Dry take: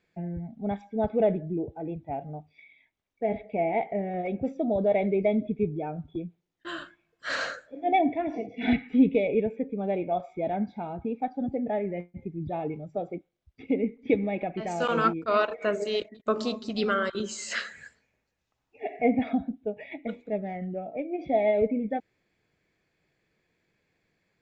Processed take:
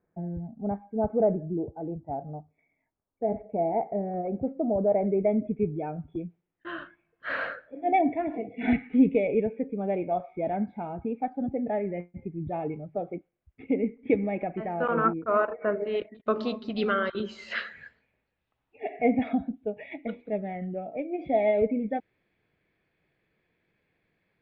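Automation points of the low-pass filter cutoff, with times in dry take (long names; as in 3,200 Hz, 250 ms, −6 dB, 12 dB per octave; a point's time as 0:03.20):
low-pass filter 24 dB per octave
0:04.87 1,300 Hz
0:05.80 2,600 Hz
0:14.19 2,600 Hz
0:15.10 1,700 Hz
0:15.67 1,700 Hz
0:16.30 3,600 Hz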